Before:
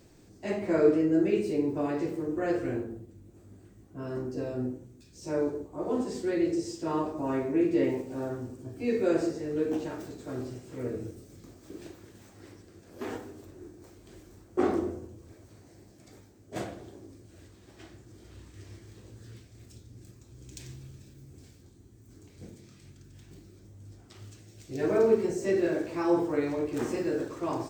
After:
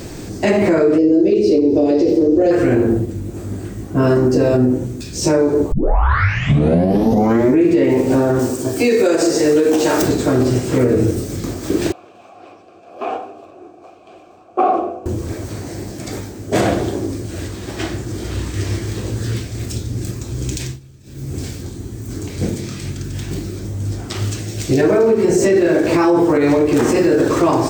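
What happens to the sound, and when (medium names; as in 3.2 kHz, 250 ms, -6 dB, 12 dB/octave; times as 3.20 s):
0.98–2.51 s: FFT filter 100 Hz 0 dB, 140 Hz -13 dB, 220 Hz -1 dB, 550 Hz +3 dB, 1.1 kHz -19 dB, 1.6 kHz -16 dB, 5.2 kHz +4 dB, 8.2 kHz -13 dB
5.72 s: tape start 1.89 s
8.39–10.02 s: tone controls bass -11 dB, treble +8 dB
11.92–15.06 s: vowel filter a
20.47–21.36 s: dip -22 dB, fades 0.33 s
whole clip: compression 4:1, threshold -34 dBFS; loudness maximiser +31.5 dB; trim -5 dB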